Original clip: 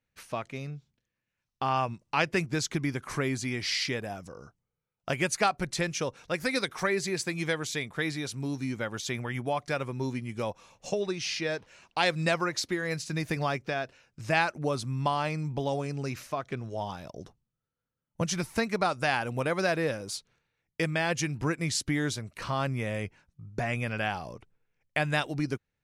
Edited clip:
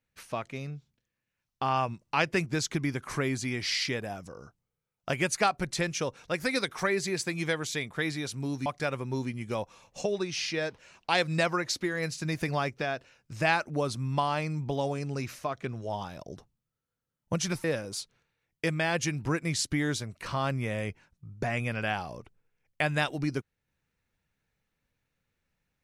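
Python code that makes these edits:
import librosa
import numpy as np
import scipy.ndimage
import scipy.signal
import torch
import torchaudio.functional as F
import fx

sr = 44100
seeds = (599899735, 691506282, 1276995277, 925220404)

y = fx.edit(x, sr, fx.cut(start_s=8.66, length_s=0.88),
    fx.cut(start_s=18.52, length_s=1.28), tone=tone)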